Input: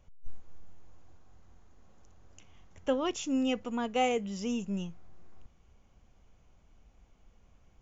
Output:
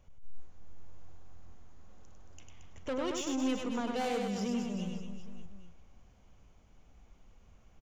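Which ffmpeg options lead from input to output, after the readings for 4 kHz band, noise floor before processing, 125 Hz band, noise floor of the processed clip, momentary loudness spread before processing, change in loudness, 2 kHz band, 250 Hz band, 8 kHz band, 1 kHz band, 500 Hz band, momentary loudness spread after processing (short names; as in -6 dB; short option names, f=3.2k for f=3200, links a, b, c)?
-2.5 dB, -63 dBFS, +0.5 dB, -61 dBFS, 8 LU, -3.0 dB, -3.0 dB, -1.5 dB, n/a, -4.5 dB, -3.5 dB, 14 LU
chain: -af "asoftclip=type=tanh:threshold=-31.5dB,aecho=1:1:100|225|381.2|576.6|820.7:0.631|0.398|0.251|0.158|0.1"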